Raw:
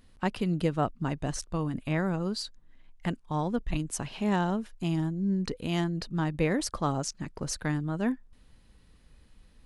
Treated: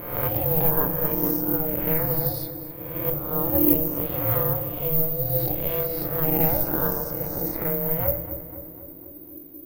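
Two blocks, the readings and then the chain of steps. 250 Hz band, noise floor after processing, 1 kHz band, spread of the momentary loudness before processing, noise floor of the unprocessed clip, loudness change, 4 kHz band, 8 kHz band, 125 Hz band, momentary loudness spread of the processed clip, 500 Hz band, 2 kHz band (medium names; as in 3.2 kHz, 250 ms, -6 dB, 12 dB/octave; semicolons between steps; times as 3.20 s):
+1.0 dB, -42 dBFS, +1.5 dB, 7 LU, -59 dBFS, +8.5 dB, -5.0 dB, -5.0 dB, +2.5 dB, 14 LU, +7.0 dB, -0.5 dB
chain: reverse spectral sustain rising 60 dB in 1.09 s; de-esser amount 70%; tilt EQ -2 dB/octave; filtered feedback delay 250 ms, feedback 61%, low-pass 2.9 kHz, level -12.5 dB; ring modulator 320 Hz; hum notches 50/100/150 Hz; simulated room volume 100 m³, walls mixed, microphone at 0.39 m; careless resampling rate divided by 3×, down filtered, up zero stuff; loudspeaker Doppler distortion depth 0.12 ms; trim -2.5 dB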